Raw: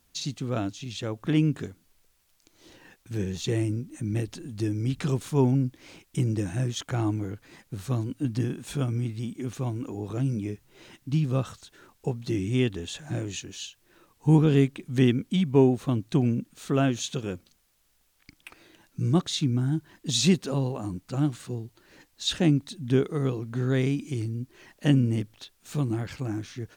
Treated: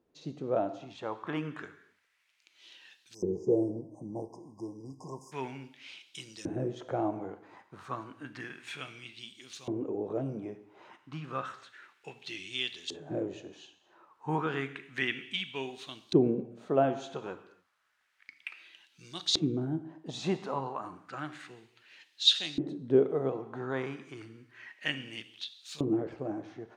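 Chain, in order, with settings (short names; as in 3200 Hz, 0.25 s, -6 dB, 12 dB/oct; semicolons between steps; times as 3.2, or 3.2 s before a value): non-linear reverb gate 0.31 s falling, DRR 10 dB; LFO band-pass saw up 0.31 Hz 390–4500 Hz; spectral delete 3.14–5.32, 1100–4800 Hz; gain +6.5 dB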